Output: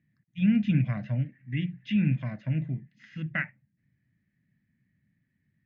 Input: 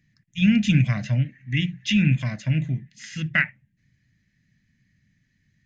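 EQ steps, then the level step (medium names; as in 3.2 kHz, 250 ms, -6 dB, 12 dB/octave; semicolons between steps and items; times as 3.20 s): high-pass 170 Hz 6 dB/octave; low-pass 1.1 kHz 6 dB/octave; distance through air 200 m; -2.0 dB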